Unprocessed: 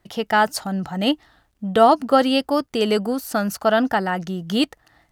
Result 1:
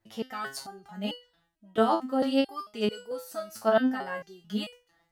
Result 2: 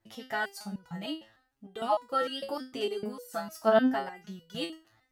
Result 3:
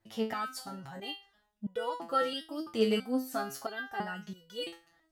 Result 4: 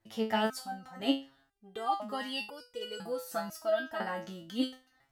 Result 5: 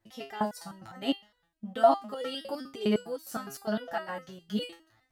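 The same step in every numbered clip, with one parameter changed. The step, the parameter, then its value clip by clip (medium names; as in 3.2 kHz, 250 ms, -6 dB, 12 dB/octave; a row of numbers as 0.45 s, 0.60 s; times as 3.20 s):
resonator arpeggio, rate: 4.5 Hz, 6.6 Hz, 3 Hz, 2 Hz, 9.8 Hz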